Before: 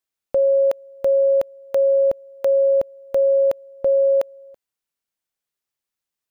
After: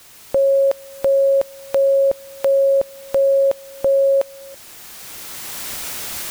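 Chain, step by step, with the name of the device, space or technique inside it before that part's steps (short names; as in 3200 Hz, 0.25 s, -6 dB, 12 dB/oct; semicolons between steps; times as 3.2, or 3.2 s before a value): cheap recorder with automatic gain (white noise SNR 27 dB; recorder AGC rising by 12 dB/s); gain +1.5 dB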